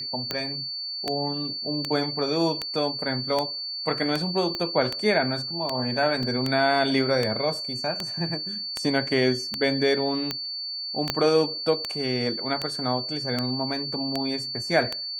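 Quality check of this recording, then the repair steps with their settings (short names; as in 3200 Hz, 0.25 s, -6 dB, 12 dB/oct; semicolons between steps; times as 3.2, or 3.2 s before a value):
tick 78 rpm -11 dBFS
tone 4500 Hz -30 dBFS
4.55 pop -16 dBFS
6.23 gap 2.4 ms
11.1 pop -7 dBFS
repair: de-click; notch 4500 Hz, Q 30; interpolate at 6.23, 2.4 ms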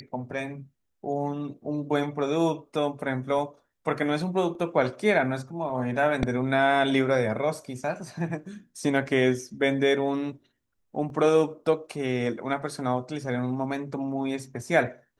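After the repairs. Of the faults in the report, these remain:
4.55 pop
11.1 pop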